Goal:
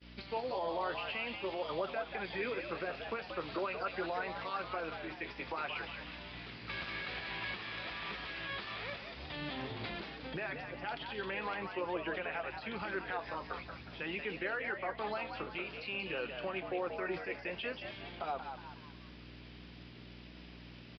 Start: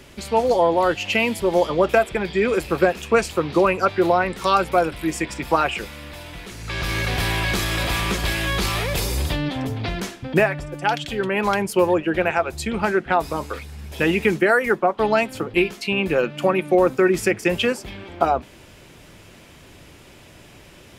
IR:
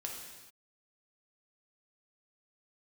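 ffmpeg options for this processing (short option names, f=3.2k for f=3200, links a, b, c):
-filter_complex "[0:a]aeval=exprs='val(0)+0.0316*(sin(2*PI*60*n/s)+sin(2*PI*2*60*n/s)/2+sin(2*PI*3*60*n/s)/3+sin(2*PI*4*60*n/s)/4+sin(2*PI*5*60*n/s)/5)':c=same,highpass=65,aemphasis=mode=production:type=75fm,agate=range=-33dB:threshold=-28dB:ratio=3:detection=peak,lowshelf=f=380:g=-10.5,acompressor=threshold=-38dB:ratio=1.5,alimiter=limit=-22dB:level=0:latency=1:release=76,flanger=delay=4.2:depth=9.9:regen=-66:speed=0.49:shape=sinusoidal,acrossover=split=3100[a][b];[b]acompressor=threshold=-51dB:ratio=4:attack=1:release=60[c];[a][c]amix=inputs=2:normalize=0,asplit=2[d][e];[e]asplit=5[f][g][h][i][j];[f]adelay=182,afreqshift=100,volume=-7dB[k];[g]adelay=364,afreqshift=200,volume=-14.1dB[l];[h]adelay=546,afreqshift=300,volume=-21.3dB[m];[i]adelay=728,afreqshift=400,volume=-28.4dB[n];[j]adelay=910,afreqshift=500,volume=-35.5dB[o];[k][l][m][n][o]amix=inputs=5:normalize=0[p];[d][p]amix=inputs=2:normalize=0,aresample=11025,aresample=44100,volume=-1.5dB"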